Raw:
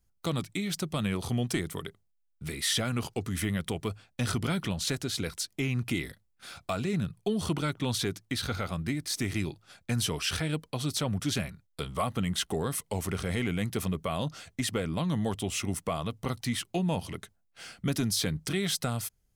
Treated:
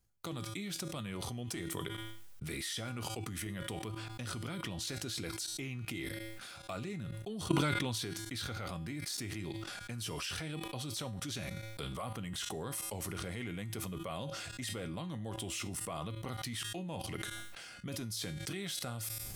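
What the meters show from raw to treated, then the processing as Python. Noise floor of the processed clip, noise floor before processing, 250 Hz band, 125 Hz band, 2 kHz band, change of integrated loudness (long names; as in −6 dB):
−49 dBFS, −72 dBFS, −9.5 dB, −8.5 dB, −6.0 dB, −8.0 dB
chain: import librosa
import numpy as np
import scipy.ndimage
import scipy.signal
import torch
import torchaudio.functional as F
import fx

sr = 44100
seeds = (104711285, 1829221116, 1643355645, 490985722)

y = fx.comb_fb(x, sr, f0_hz=110.0, decay_s=0.42, harmonics='odd', damping=0.0, mix_pct=70)
y = fx.level_steps(y, sr, step_db=17)
y = fx.low_shelf(y, sr, hz=110.0, db=-4.5)
y = fx.sustainer(y, sr, db_per_s=21.0)
y = y * 10.0 ** (11.5 / 20.0)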